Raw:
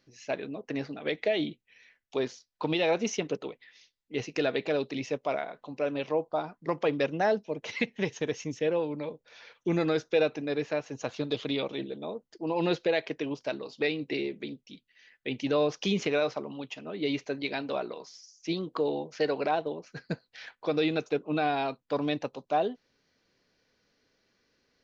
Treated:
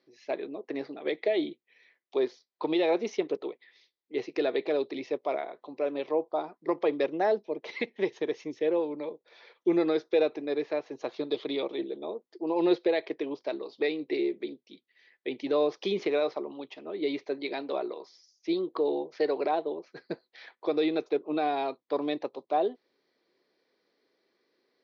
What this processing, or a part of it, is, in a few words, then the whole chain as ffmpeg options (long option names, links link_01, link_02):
phone earpiece: -af "highpass=330,equalizer=frequency=360:width_type=q:width=4:gain=9,equalizer=frequency=1500:width_type=q:width=4:gain=-7,equalizer=frequency=2800:width_type=q:width=4:gain=-9,lowpass=frequency=4400:width=0.5412,lowpass=frequency=4400:width=1.3066"